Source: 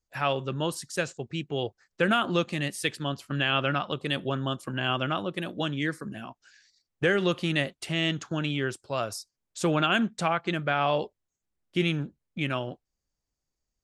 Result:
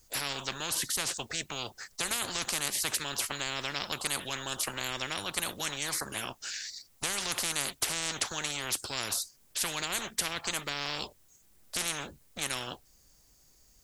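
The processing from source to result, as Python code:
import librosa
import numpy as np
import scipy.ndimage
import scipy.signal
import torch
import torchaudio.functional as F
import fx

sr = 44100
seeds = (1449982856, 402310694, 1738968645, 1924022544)

y = fx.high_shelf(x, sr, hz=5700.0, db=11.5)
y = fx.spectral_comp(y, sr, ratio=10.0)
y = F.gain(torch.from_numpy(y), -3.5).numpy()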